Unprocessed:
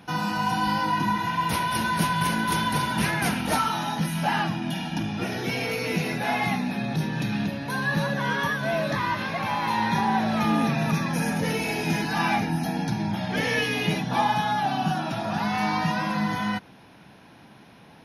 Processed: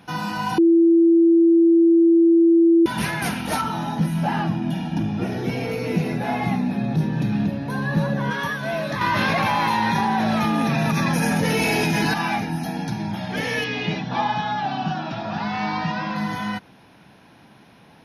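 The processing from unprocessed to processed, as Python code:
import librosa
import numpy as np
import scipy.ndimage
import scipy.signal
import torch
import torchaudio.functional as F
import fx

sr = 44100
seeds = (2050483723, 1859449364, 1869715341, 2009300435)

y = fx.tilt_shelf(x, sr, db=6.0, hz=910.0, at=(3.61, 8.31))
y = fx.env_flatten(y, sr, amount_pct=100, at=(9.01, 12.14))
y = fx.lowpass(y, sr, hz=5300.0, slope=24, at=(13.64, 16.16))
y = fx.edit(y, sr, fx.bleep(start_s=0.58, length_s=2.28, hz=334.0, db=-11.0), tone=tone)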